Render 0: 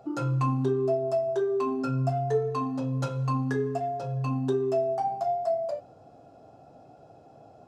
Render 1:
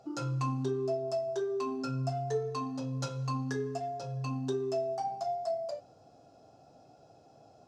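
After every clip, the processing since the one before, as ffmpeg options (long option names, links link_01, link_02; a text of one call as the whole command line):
ffmpeg -i in.wav -af "equalizer=frequency=5500:width_type=o:width=1.3:gain=12,volume=-6.5dB" out.wav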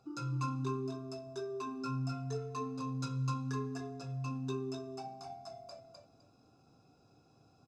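ffmpeg -i in.wav -af "bandreject=frequency=850:width=12,aecho=1:1:0.8:0.76,aecho=1:1:255|510|765:0.668|0.134|0.0267,volume=-7.5dB" out.wav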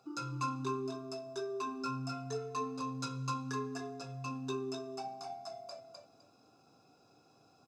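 ffmpeg -i in.wav -af "highpass=frequency=380:poles=1,volume=4dB" out.wav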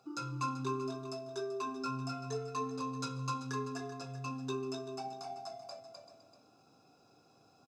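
ffmpeg -i in.wav -af "aecho=1:1:386:0.237" out.wav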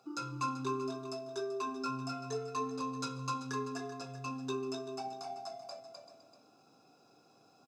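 ffmpeg -i in.wav -af "highpass=150,volume=1dB" out.wav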